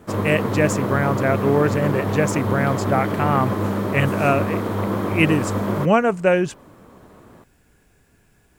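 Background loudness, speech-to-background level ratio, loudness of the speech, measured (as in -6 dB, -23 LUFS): -24.0 LUFS, 2.5 dB, -21.5 LUFS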